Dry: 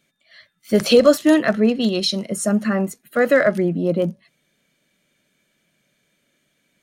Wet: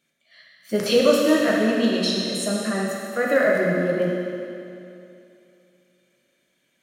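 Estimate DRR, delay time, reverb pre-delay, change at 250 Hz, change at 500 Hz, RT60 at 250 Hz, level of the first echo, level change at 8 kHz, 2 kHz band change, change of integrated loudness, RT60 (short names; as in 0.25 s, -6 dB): -3.5 dB, none, 9 ms, -4.0 dB, -2.5 dB, 2.7 s, none, -2.0 dB, -0.5 dB, -3.0 dB, 2.7 s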